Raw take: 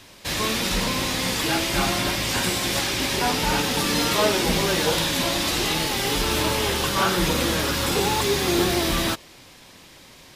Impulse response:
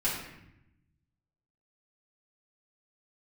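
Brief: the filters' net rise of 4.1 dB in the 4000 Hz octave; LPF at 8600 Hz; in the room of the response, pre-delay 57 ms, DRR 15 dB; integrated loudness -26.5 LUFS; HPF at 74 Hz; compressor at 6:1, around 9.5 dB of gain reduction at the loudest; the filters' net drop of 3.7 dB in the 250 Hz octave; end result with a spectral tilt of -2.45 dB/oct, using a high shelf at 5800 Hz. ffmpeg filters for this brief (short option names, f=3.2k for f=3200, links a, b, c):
-filter_complex "[0:a]highpass=74,lowpass=8.6k,equalizer=f=250:t=o:g=-5.5,equalizer=f=4k:t=o:g=8,highshelf=f=5.8k:g=-8,acompressor=threshold=-27dB:ratio=6,asplit=2[a][b];[1:a]atrim=start_sample=2205,adelay=57[c];[b][c]afir=irnorm=-1:irlink=0,volume=-23dB[d];[a][d]amix=inputs=2:normalize=0,volume=1.5dB"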